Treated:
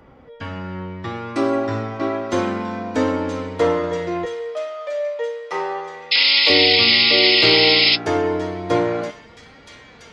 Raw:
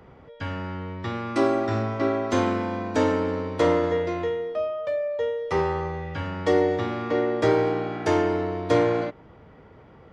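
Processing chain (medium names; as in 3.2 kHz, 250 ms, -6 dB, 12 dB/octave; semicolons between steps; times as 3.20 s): 4.25–6.50 s: high-pass 500 Hz 12 dB/octave; feedback echo behind a high-pass 973 ms, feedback 62%, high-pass 2.7 kHz, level -7 dB; reverberation RT60 0.60 s, pre-delay 57 ms, DRR 19.5 dB; 6.11–7.96 s: painted sound noise 1.9–5.3 kHz -17 dBFS; flange 0.31 Hz, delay 3.4 ms, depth 3.9 ms, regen +48%; trim +6 dB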